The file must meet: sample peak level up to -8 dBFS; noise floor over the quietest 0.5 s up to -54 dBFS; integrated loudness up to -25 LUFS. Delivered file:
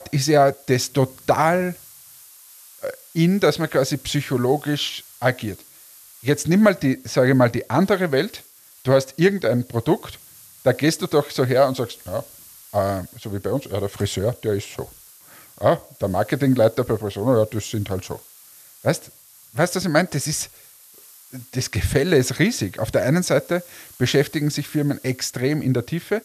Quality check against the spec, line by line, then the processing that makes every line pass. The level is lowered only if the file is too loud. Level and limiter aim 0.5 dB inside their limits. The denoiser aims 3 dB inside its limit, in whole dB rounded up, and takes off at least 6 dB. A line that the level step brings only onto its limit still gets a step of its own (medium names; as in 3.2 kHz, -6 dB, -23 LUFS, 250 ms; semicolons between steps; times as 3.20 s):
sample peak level -4.5 dBFS: fail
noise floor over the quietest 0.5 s -48 dBFS: fail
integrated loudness -21.0 LUFS: fail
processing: noise reduction 6 dB, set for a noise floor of -48 dBFS; trim -4.5 dB